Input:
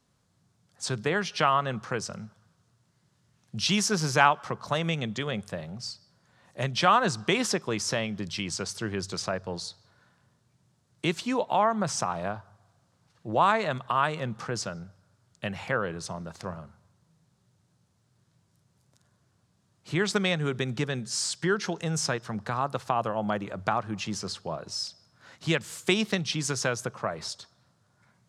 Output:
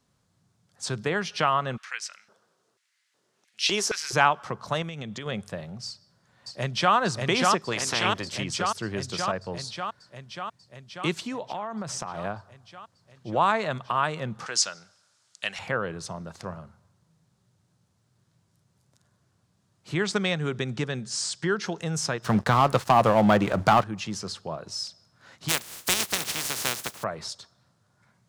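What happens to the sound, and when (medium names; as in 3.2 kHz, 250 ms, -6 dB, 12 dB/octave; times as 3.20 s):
1.76–4.12 s: LFO high-pass square 0.63 Hz -> 2.8 Hz 400–2100 Hz
4.82–5.26 s: compression, threshold -32 dBFS
5.87–6.95 s: echo throw 590 ms, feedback 75%, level -1.5 dB
7.71–8.37 s: spectral peaks clipped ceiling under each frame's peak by 17 dB
11.25–12.18 s: compression, threshold -29 dBFS
14.46–15.59 s: frequency weighting ITU-R 468
20.03–21.66 s: low-pass 9.6 kHz 24 dB/octave
22.24–23.84 s: waveshaping leveller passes 3
25.48–27.02 s: spectral contrast reduction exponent 0.18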